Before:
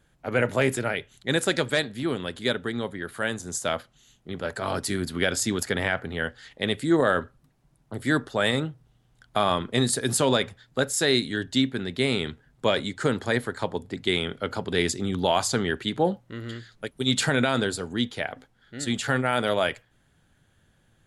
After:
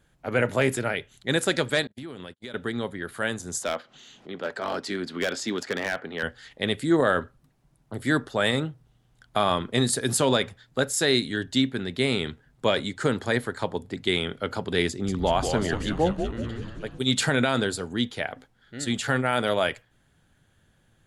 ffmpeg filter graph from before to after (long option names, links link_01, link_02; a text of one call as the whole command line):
ffmpeg -i in.wav -filter_complex "[0:a]asettb=1/sr,asplit=3[link_01][link_02][link_03];[link_01]atrim=end=1.874[link_04];[link_02]atrim=start=1.87:end=2.54,asetpts=PTS-STARTPTS,afade=type=in:duration=0.004:curve=qsin,afade=type=out:start_time=0.666:duration=0.004:curve=qsin,agate=range=-47dB:threshold=-37dB:ratio=16:release=100:detection=peak,acompressor=threshold=-34dB:ratio=10:attack=3.2:release=140:knee=1:detection=peak[link_05];[link_03]atrim=start=2.536[link_06];[link_04][link_05]acrossfade=duration=0.004:curve1=hsin:curve2=qsin[link_07];[link_07][link_06]acrossfade=duration=0.004:curve1=qsin:curve2=hsin,asettb=1/sr,asplit=3[link_08][link_09][link_10];[link_08]atrim=end=3.634[link_11];[link_09]atrim=start=3.63:end=6.23,asetpts=PTS-STARTPTS,afade=type=in:duration=0.004:curve=qsin,afade=type=out:start_time=2.596:duration=0.004:curve=qsin,acrossover=split=190 6000:gain=0.0891 1 0.0794[link_12][link_13][link_14];[link_12][link_13][link_14]amix=inputs=3:normalize=0,acompressor=mode=upward:threshold=-37dB:ratio=2.5:attack=3.2:release=140:knee=2.83:detection=peak,asoftclip=type=hard:threshold=-20.5dB[link_15];[link_10]atrim=start=6.226[link_16];[link_11][link_15]acrossfade=duration=0.004:curve1=hsin:curve2=qsin[link_17];[link_17][link_16]acrossfade=duration=0.004:curve1=qsin:curve2=hsin,asettb=1/sr,asplit=3[link_18][link_19][link_20];[link_18]atrim=end=14.884[link_21];[link_19]atrim=start=14.88:end=16.99,asetpts=PTS-STARTPTS,afade=type=in:duration=0.004:curve=qsin,afade=type=out:start_time=2.106:duration=0.004:curve=qsin,highshelf=frequency=2600:gain=-8.5,asplit=9[link_22][link_23][link_24][link_25][link_26][link_27][link_28][link_29][link_30];[link_23]adelay=188,afreqshift=-130,volume=-6dB[link_31];[link_24]adelay=376,afreqshift=-260,volume=-10.4dB[link_32];[link_25]adelay=564,afreqshift=-390,volume=-14.9dB[link_33];[link_26]adelay=752,afreqshift=-520,volume=-19.3dB[link_34];[link_27]adelay=940,afreqshift=-650,volume=-23.7dB[link_35];[link_28]adelay=1128,afreqshift=-780,volume=-28.2dB[link_36];[link_29]adelay=1316,afreqshift=-910,volume=-32.6dB[link_37];[link_30]adelay=1504,afreqshift=-1040,volume=-37.1dB[link_38];[link_22][link_31][link_32][link_33][link_34][link_35][link_36][link_37][link_38]amix=inputs=9:normalize=0,atrim=end_sample=93051[link_39];[link_20]atrim=start=16.986[link_40];[link_21][link_39]acrossfade=duration=0.004:curve1=hsin:curve2=qsin[link_41];[link_41][link_40]acrossfade=duration=0.004:curve1=qsin:curve2=hsin" out.wav